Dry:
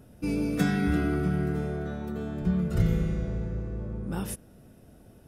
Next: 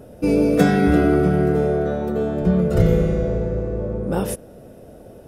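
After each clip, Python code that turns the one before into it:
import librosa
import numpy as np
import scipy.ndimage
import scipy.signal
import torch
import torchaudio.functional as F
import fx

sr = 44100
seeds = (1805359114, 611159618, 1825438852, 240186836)

y = fx.peak_eq(x, sr, hz=530.0, db=13.0, octaves=1.1)
y = y * librosa.db_to_amplitude(6.5)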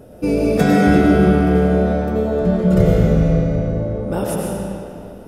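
y = fx.rev_freeverb(x, sr, rt60_s=2.5, hf_ratio=0.8, predelay_ms=65, drr_db=-2.0)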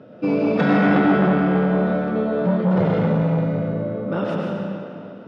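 y = fx.cabinet(x, sr, low_hz=140.0, low_slope=24, high_hz=3900.0, hz=(400.0, 800.0, 1300.0), db=(-5, -6, 6))
y = fx.transformer_sat(y, sr, knee_hz=670.0)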